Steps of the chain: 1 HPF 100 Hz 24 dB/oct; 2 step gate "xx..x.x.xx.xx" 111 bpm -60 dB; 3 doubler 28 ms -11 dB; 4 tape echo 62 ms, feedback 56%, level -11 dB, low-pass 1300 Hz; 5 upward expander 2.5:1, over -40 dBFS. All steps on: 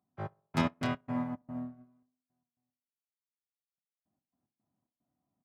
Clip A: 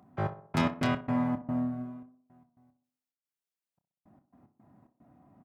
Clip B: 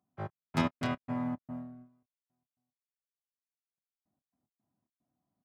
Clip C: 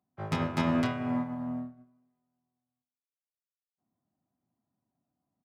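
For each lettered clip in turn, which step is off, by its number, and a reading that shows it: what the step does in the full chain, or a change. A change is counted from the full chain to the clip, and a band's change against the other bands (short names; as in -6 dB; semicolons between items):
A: 5, crest factor change -4.5 dB; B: 4, momentary loudness spread change +1 LU; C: 2, 250 Hz band +1.5 dB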